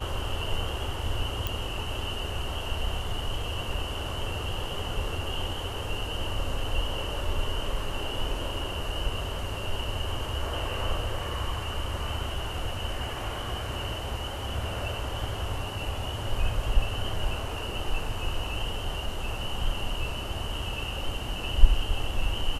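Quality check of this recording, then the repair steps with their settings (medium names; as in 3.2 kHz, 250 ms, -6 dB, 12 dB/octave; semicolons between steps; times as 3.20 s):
1.47 s: pop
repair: de-click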